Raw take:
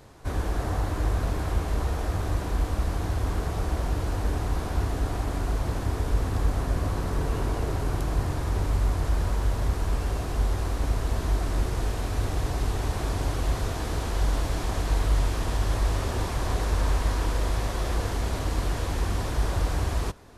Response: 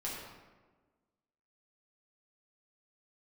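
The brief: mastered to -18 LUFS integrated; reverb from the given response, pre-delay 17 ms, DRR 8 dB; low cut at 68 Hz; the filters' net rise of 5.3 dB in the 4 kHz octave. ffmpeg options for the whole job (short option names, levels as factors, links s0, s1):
-filter_complex "[0:a]highpass=68,equalizer=f=4000:t=o:g=6.5,asplit=2[s0][s1];[1:a]atrim=start_sample=2205,adelay=17[s2];[s1][s2]afir=irnorm=-1:irlink=0,volume=0.316[s3];[s0][s3]amix=inputs=2:normalize=0,volume=3.98"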